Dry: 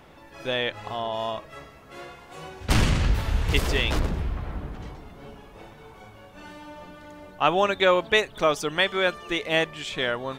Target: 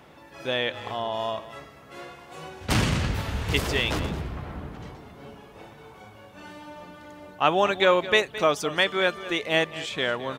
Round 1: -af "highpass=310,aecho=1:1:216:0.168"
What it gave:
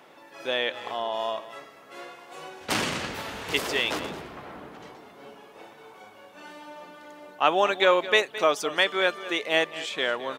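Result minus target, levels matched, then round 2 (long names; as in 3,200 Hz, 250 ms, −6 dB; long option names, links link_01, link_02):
125 Hz band −14.5 dB
-af "highpass=80,aecho=1:1:216:0.168"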